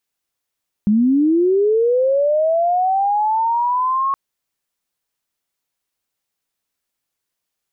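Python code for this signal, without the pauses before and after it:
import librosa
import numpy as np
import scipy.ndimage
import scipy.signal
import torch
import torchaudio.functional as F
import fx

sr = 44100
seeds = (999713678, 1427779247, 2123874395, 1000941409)

y = fx.chirp(sr, length_s=3.27, from_hz=200.0, to_hz=1100.0, law='linear', from_db=-11.0, to_db=-15.5)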